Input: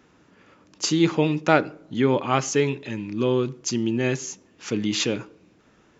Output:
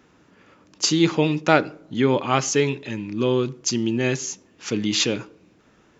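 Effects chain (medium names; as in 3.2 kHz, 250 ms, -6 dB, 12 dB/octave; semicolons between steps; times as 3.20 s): dynamic bell 4.7 kHz, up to +4 dB, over -42 dBFS, Q 0.82; trim +1 dB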